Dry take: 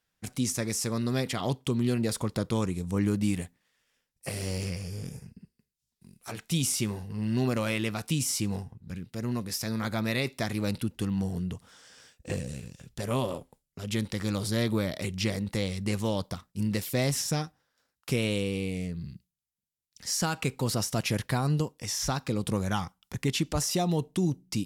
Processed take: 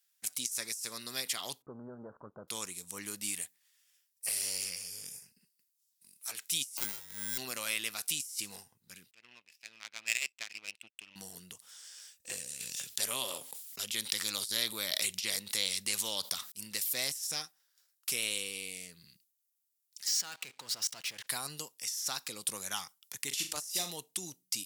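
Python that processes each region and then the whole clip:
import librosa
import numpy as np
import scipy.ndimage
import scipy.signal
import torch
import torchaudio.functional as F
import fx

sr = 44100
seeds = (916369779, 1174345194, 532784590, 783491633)

y = fx.chain(x, sr, fx.halfwave_gain(db=-12.0),
    fx.steep_lowpass(hz=1500.0, slope=72),
    fx.tilt_shelf(db=7.0, hz=790.0), at=(1.62, 2.48))
y = fx.chain(y, sr, fx.sample_hold(seeds[0], rate_hz=1800.0, jitter_pct=0),
    fx.doubler(ms=19.0, db=-7.0), at=(6.77, 7.38))
y = fx.chain(y, sr, fx.lowpass_res(hz=2600.0, q=7.8),
    fx.power_curve(exponent=2.0), at=(9.11, 11.16))
y = fx.chain(y, sr, fx.peak_eq(hz=3600.0, db=4.0, octaves=0.78),
    fx.env_flatten(amount_pct=50), at=(12.6, 16.52))
y = fx.chain(y, sr, fx.lowpass(hz=4200.0, slope=12),
    fx.level_steps(step_db=22),
    fx.leveller(passes=3), at=(20.07, 21.27))
y = fx.chain(y, sr, fx.notch(hz=670.0, q=15.0),
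    fx.room_flutter(wall_m=6.9, rt60_s=0.31), at=(23.27, 23.91))
y = np.diff(y, prepend=0.0)
y = fx.over_compress(y, sr, threshold_db=-37.0, ratio=-0.5)
y = F.gain(torch.from_numpy(y), 5.0).numpy()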